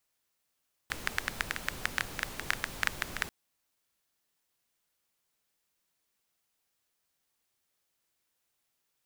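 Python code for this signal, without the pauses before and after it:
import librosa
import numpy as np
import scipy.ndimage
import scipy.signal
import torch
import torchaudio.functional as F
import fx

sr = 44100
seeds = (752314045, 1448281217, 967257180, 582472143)

y = fx.rain(sr, seeds[0], length_s=2.39, drops_per_s=9.1, hz=1700.0, bed_db=-5.5)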